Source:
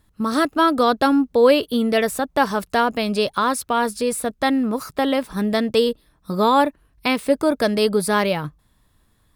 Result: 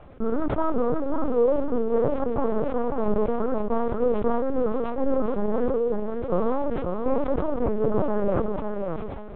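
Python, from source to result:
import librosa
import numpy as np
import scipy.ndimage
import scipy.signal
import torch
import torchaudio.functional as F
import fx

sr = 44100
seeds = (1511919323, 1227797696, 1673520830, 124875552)

y = fx.bin_compress(x, sr, power=0.4)
y = scipy.signal.sosfilt(scipy.signal.butter(4, 1200.0, 'lowpass', fs=sr, output='sos'), y)
y = fx.low_shelf(y, sr, hz=69.0, db=7.5)
y = fx.hpss(y, sr, part='percussive', gain_db=-17)
y = fx.level_steps(y, sr, step_db=20)
y = fx.chopper(y, sr, hz=9.5, depth_pct=65, duty_pct=85)
y = np.sign(y) * np.maximum(np.abs(y) - 10.0 ** (-46.5 / 20.0), 0.0)
y = fx.rotary_switch(y, sr, hz=1.2, then_hz=5.5, switch_at_s=7.81)
y = fx.echo_feedback(y, sr, ms=542, feedback_pct=27, wet_db=-4.5)
y = fx.lpc_vocoder(y, sr, seeds[0], excitation='pitch_kept', order=8)
y = fx.sustainer(y, sr, db_per_s=29.0)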